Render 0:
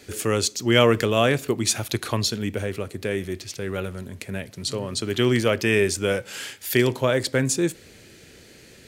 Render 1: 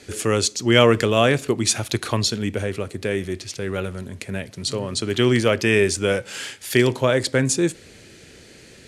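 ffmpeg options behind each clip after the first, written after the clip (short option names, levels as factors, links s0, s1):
-af "lowpass=f=11000:w=0.5412,lowpass=f=11000:w=1.3066,volume=1.33"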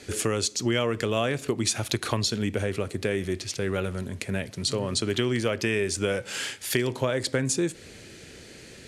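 -af "acompressor=threshold=0.0794:ratio=6"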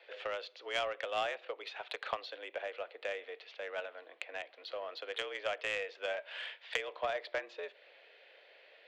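-af "highpass=f=450:t=q:w=0.5412,highpass=f=450:t=q:w=1.307,lowpass=f=3500:t=q:w=0.5176,lowpass=f=3500:t=q:w=0.7071,lowpass=f=3500:t=q:w=1.932,afreqshift=83,aeval=exprs='0.299*(cos(1*acos(clip(val(0)/0.299,-1,1)))-cos(1*PI/2))+0.0473*(cos(3*acos(clip(val(0)/0.299,-1,1)))-cos(3*PI/2))+0.00596*(cos(7*acos(clip(val(0)/0.299,-1,1)))-cos(7*PI/2))':c=same,volume=0.891"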